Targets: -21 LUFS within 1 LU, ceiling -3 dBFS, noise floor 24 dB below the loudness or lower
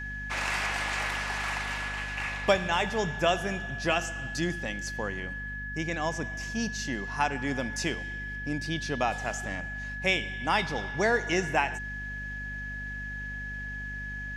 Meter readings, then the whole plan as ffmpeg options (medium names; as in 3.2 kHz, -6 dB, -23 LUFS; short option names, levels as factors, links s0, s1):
hum 50 Hz; highest harmonic 250 Hz; hum level -38 dBFS; steady tone 1.7 kHz; tone level -36 dBFS; loudness -30.5 LUFS; peak level -8.5 dBFS; loudness target -21.0 LUFS
-> -af "bandreject=f=50:t=h:w=6,bandreject=f=100:t=h:w=6,bandreject=f=150:t=h:w=6,bandreject=f=200:t=h:w=6,bandreject=f=250:t=h:w=6"
-af "bandreject=f=1700:w=30"
-af "volume=2.99,alimiter=limit=0.708:level=0:latency=1"